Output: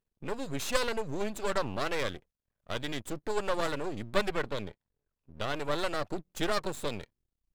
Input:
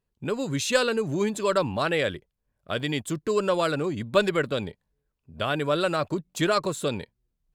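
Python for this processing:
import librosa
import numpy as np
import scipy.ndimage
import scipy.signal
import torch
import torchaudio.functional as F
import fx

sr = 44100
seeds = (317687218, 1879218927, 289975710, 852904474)

y = fx.high_shelf(x, sr, hz=5900.0, db=-10.0, at=(4.35, 5.55))
y = np.maximum(y, 0.0)
y = y * 10.0 ** (-3.0 / 20.0)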